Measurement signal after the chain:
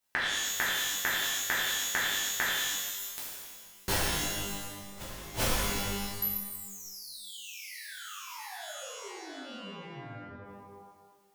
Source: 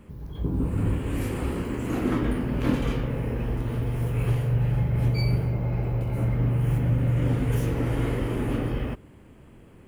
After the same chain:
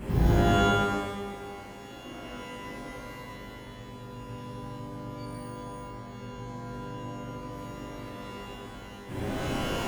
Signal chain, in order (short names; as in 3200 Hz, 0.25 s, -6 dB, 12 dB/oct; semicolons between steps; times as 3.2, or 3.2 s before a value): flipped gate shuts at -29 dBFS, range -37 dB; shimmer reverb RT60 1.3 s, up +12 st, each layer -2 dB, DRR -9 dB; gain +8.5 dB